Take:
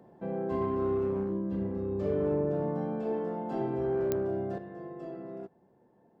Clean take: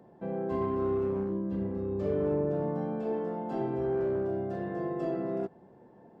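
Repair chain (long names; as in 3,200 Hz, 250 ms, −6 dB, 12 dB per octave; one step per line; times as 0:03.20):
click removal
level correction +9 dB, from 0:04.58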